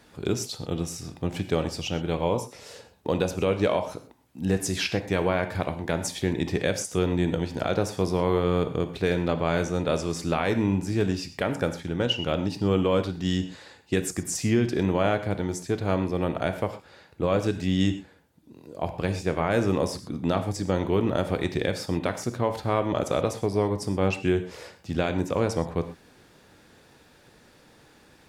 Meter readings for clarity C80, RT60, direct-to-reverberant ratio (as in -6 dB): 13.5 dB, no single decay rate, 8.5 dB